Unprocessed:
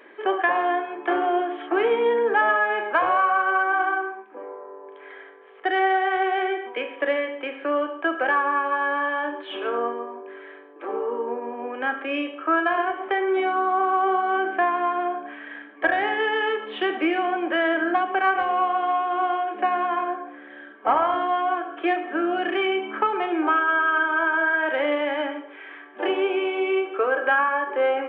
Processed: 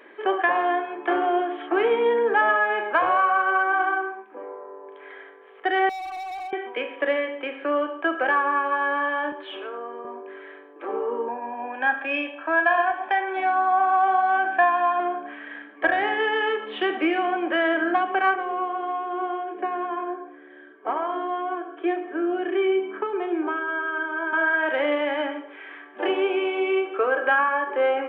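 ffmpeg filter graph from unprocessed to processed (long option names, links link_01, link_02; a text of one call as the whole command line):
ffmpeg -i in.wav -filter_complex "[0:a]asettb=1/sr,asplit=3[link_01][link_02][link_03];[link_01]atrim=end=5.894[link_04];[link_02]atrim=start=5.89:end=6.53,asetpts=PTS-STARTPTS,afade=type=in:duration=0.004:curve=qsin,afade=type=out:start_time=0.636:duration=0.004:curve=qsin,asplit=3[link_05][link_06][link_07];[link_05]bandpass=frequency=730:width_type=q:width=8,volume=0dB[link_08];[link_06]bandpass=frequency=1090:width_type=q:width=8,volume=-6dB[link_09];[link_07]bandpass=frequency=2440:width_type=q:width=8,volume=-9dB[link_10];[link_08][link_09][link_10]amix=inputs=3:normalize=0,equalizer=frequency=350:width=3.6:gain=-14,volume=31.5dB,asoftclip=hard,volume=-31.5dB[link_11];[link_03]atrim=start=6.526[link_12];[link_04][link_11]acrossfade=duration=0.004:curve1=hsin:curve2=qsin[link_13];[link_13][link_12]acrossfade=duration=0.004:curve1=qsin:curve2=hsin,asettb=1/sr,asplit=3[link_14][link_15][link_16];[link_14]atrim=end=9.324[link_17];[link_15]atrim=start=9.32:end=10.05,asetpts=PTS-STARTPTS,afade=type=in:duration=0.004:curve=qsin,afade=type=out:start_time=0.726:duration=0.004:curve=qsin,highpass=270,acompressor=threshold=-33dB:ratio=3:attack=3.2:release=140:knee=1:detection=peak[link_18];[link_16]atrim=start=10.046[link_19];[link_17][link_18]acrossfade=duration=0.004:curve1=hsin:curve2=qsin[link_20];[link_20][link_19]acrossfade=duration=0.004:curve1=qsin:curve2=hsin,asettb=1/sr,asplit=3[link_21][link_22][link_23];[link_21]atrim=end=11.284[link_24];[link_22]atrim=start=11.28:end=15,asetpts=PTS-STARTPTS,afade=type=in:duration=0.004:curve=qsin,afade=type=out:start_time=3.716:duration=0.004:curve=qsin,equalizer=frequency=140:width_type=o:width=1.2:gain=-11,aecho=1:1:1.2:0.74,atrim=end_sample=164052[link_25];[link_23]atrim=start=14.996[link_26];[link_24][link_25]acrossfade=duration=0.004:curve1=hsin:curve2=qsin[link_27];[link_27][link_26]acrossfade=duration=0.004:curve1=qsin:curve2=hsin,asettb=1/sr,asplit=3[link_28][link_29][link_30];[link_28]atrim=end=18.354[link_31];[link_29]atrim=start=18.35:end=24.33,asetpts=PTS-STARTPTS,afade=type=in:duration=0.004:curve=qsin,afade=type=out:start_time=5.976:duration=0.004:curve=qsin,highpass=360,equalizer=frequency=380:width_type=q:width=4:gain=7,equalizer=frequency=550:width_type=q:width=4:gain=-7,equalizer=frequency=830:width_type=q:width=4:gain=-9,equalizer=frequency=1300:width_type=q:width=4:gain=-8,equalizer=frequency=1800:width_type=q:width=4:gain=-5,equalizer=frequency=2700:width_type=q:width=4:gain=-10,lowpass=frequency=3100:width=0.5412,lowpass=frequency=3100:width=1.3066,bandreject=frequency=2100:width=18[link_32];[link_30]atrim=start=24.326[link_33];[link_31][link_32]acrossfade=duration=0.004:curve1=hsin:curve2=qsin[link_34];[link_34][link_33]acrossfade=duration=0.004:curve1=qsin:curve2=hsin" out.wav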